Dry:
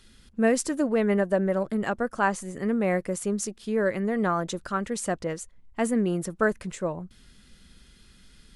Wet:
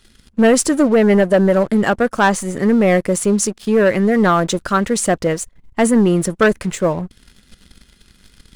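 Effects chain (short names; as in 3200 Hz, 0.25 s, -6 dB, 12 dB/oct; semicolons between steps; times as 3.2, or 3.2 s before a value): sample leveller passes 2; gain +5.5 dB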